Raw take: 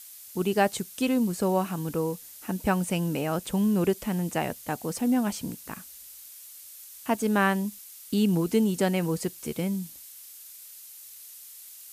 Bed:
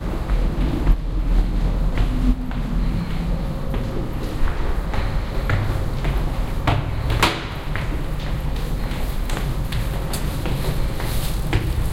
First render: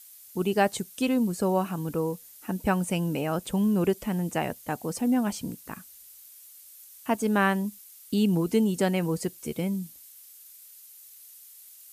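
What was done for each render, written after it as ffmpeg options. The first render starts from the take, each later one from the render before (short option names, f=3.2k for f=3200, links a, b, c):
-af "afftdn=nr=6:nf=-47"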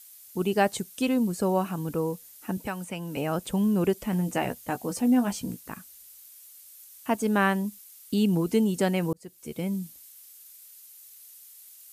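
-filter_complex "[0:a]asettb=1/sr,asplit=3[a][b][c];[a]atrim=end=2.574[d];[b]atrim=start=2.57:end=3.17,asetpts=PTS-STARTPTS,afade=t=in:d=0.004:c=qsin,afade=t=out:st=0.596:d=0.004:c=qsin,acrossover=split=130|750|1500|3300[e][f][g][h][i];[e]acompressor=threshold=-53dB:ratio=3[j];[f]acompressor=threshold=-37dB:ratio=3[k];[g]acompressor=threshold=-38dB:ratio=3[l];[h]acompressor=threshold=-42dB:ratio=3[m];[i]acompressor=threshold=-46dB:ratio=3[n];[j][k][l][m][n]amix=inputs=5:normalize=0[o];[c]atrim=start=3.166[p];[d][o]acrossfade=d=0.004:c1=hsin:c2=qsin[q];[q][p]acrossfade=d=0.004:c1=qsin:c2=hsin,asettb=1/sr,asplit=3[r][s][t];[r]atrim=end=4.114[u];[s]atrim=start=4.11:end=5.59,asetpts=PTS-STARTPTS,afade=t=in:d=0.004:c=qsin,afade=t=out:st=1.476:d=0.004:c=qsin,asplit=2[v][w];[w]adelay=16,volume=-7dB[x];[v][x]amix=inputs=2:normalize=0,atrim=end_sample=65268[y];[t]atrim=start=5.586[z];[u][y]acrossfade=d=0.004:c1=hsin:c2=qsin[aa];[aa][z]acrossfade=d=0.004:c1=qsin:c2=hsin,asplit=2[ab][ac];[ab]atrim=end=9.13,asetpts=PTS-STARTPTS,afade=t=out:st=9.126:d=0.004:c=hsin[ad];[ac]atrim=start=9.13,asetpts=PTS-STARTPTS,afade=t=in:d=0.61[ae];[ad][ae]concat=n=2:v=0:a=1"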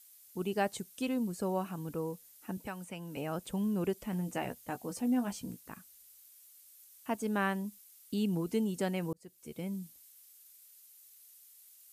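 -af "volume=-8.5dB"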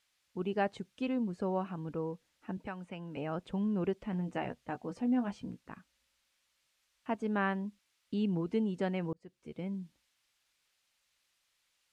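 -af "lowpass=2.9k"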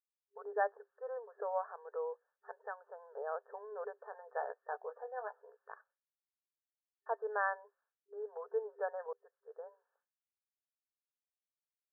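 -af "agate=range=-33dB:threshold=-59dB:ratio=3:detection=peak,afftfilt=real='re*between(b*sr/4096,400,1800)':imag='im*between(b*sr/4096,400,1800)':win_size=4096:overlap=0.75"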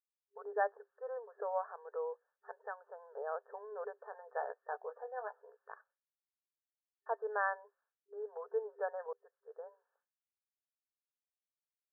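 -af anull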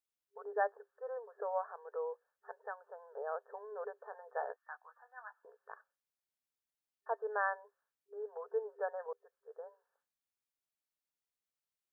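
-filter_complex "[0:a]asettb=1/sr,asplit=3[a][b][c];[a]atrim=end=4.564[d];[b]atrim=start=4.56:end=5.45,asetpts=PTS-STARTPTS,afade=t=in:d=0.004:c=qsin,afade=t=out:st=0.886:d=0.004:c=qsin,highpass=f=1.1k:w=0.5412,highpass=f=1.1k:w=1.3066[e];[c]atrim=start=5.446[f];[d][e]acrossfade=d=0.004:c1=hsin:c2=qsin[g];[g][f]acrossfade=d=0.004:c1=qsin:c2=hsin"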